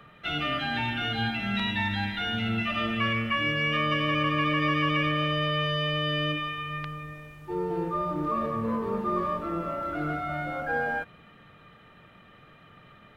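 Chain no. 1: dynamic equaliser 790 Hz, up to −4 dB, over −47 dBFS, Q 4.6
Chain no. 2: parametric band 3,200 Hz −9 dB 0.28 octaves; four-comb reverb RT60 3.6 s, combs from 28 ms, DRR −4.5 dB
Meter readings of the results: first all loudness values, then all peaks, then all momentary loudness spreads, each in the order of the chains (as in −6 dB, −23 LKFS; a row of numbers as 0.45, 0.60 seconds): −28.0, −24.0 LKFS; −14.5, −11.0 dBFS; 8, 11 LU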